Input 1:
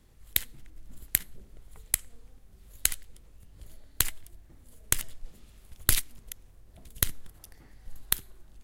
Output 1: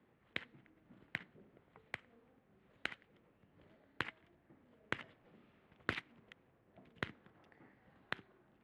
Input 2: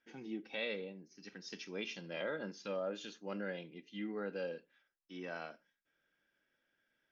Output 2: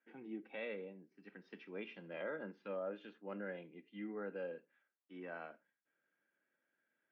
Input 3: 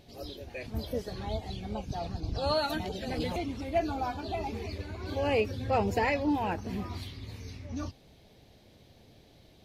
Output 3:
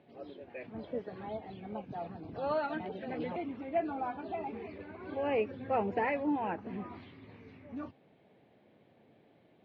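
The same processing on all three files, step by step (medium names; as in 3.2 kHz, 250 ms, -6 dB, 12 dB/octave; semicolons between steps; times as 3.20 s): Chebyshev band-pass 110–3100 Hz, order 2; three-band isolator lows -16 dB, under 160 Hz, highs -21 dB, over 2.5 kHz; trim -2 dB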